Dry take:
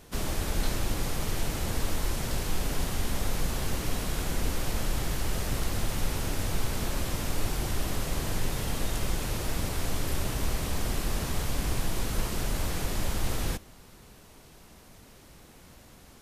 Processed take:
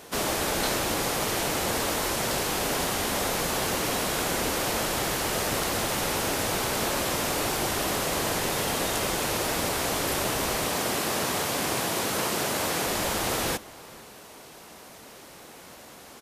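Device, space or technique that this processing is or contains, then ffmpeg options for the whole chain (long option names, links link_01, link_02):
filter by subtraction: -filter_complex "[0:a]asplit=2[link_01][link_02];[link_02]lowpass=590,volume=-1[link_03];[link_01][link_03]amix=inputs=2:normalize=0,asettb=1/sr,asplit=3[link_04][link_05][link_06];[link_04]atrim=end=10.684[link_07];[link_05]atrim=start=10.68:end=12.87,asetpts=PTS-STARTPTS,afade=type=in:duration=0.004:curve=qsin,afade=type=out:start_time=2.186:duration=0.004:curve=qsin,highpass=98[link_08];[link_06]atrim=start=12.866[link_09];[link_07][link_08]acrossfade=duration=0.004:curve1=hsin:curve2=qsin[link_10];[link_10][link_09]acrossfade=duration=0.004:curve1=qsin:curve2=hsin,asplit=2[link_11][link_12];[link_12]adelay=460.6,volume=-21dB,highshelf=frequency=4000:gain=-10.4[link_13];[link_11][link_13]amix=inputs=2:normalize=0,volume=8dB"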